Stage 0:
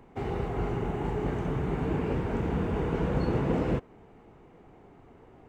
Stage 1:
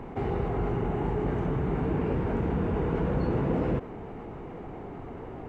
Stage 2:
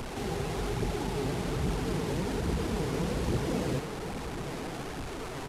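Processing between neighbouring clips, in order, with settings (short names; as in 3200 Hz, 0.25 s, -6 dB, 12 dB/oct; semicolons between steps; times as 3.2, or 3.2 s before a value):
high shelf 3600 Hz -12 dB; fast leveller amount 50%; gain -1 dB
delta modulation 64 kbps, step -28.5 dBFS; flange 1.2 Hz, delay 0.1 ms, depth 7.9 ms, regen +41%; outdoor echo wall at 180 m, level -11 dB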